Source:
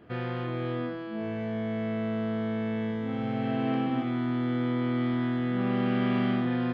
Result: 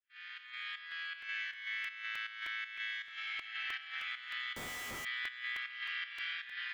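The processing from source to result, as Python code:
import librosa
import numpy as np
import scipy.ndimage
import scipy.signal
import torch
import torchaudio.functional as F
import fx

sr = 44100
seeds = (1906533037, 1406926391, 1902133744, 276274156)

p1 = fx.fade_in_head(x, sr, length_s=1.31)
p2 = scipy.signal.sosfilt(scipy.signal.butter(6, 1700.0, 'highpass', fs=sr, output='sos'), p1)
p3 = fx.rider(p2, sr, range_db=5, speed_s=0.5)
p4 = p3 + fx.echo_alternate(p3, sr, ms=282, hz=2400.0, feedback_pct=56, wet_db=-6, dry=0)
p5 = fx.volume_shaper(p4, sr, bpm=159, per_beat=1, depth_db=-10, release_ms=155.0, shape='slow start')
p6 = fx.schmitt(p5, sr, flips_db=-57.0, at=(4.56, 5.05))
p7 = fx.buffer_crackle(p6, sr, first_s=0.91, period_s=0.31, block=128, kind='repeat')
y = p7 * 10.0 ** (6.5 / 20.0)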